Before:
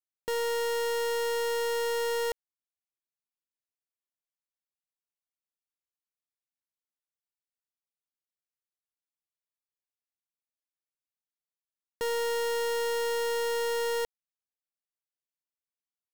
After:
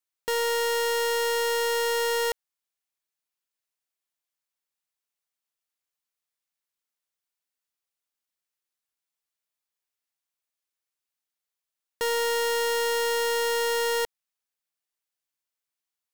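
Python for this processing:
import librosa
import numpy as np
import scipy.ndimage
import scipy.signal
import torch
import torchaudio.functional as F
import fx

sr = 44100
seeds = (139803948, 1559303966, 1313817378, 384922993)

y = fx.low_shelf(x, sr, hz=470.0, db=-8.5)
y = F.gain(torch.from_numpy(y), 7.0).numpy()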